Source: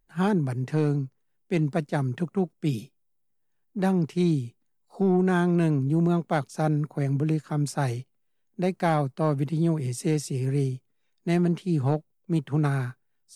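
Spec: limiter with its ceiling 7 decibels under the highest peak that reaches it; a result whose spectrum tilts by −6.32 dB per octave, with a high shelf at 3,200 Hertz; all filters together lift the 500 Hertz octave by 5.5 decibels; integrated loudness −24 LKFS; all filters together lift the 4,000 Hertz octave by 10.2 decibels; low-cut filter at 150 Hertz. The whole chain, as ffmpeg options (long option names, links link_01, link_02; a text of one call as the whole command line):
ffmpeg -i in.wav -af "highpass=150,equalizer=frequency=500:width_type=o:gain=7.5,highshelf=frequency=3200:gain=5.5,equalizer=frequency=4000:width_type=o:gain=8.5,volume=2.5dB,alimiter=limit=-12.5dB:level=0:latency=1" out.wav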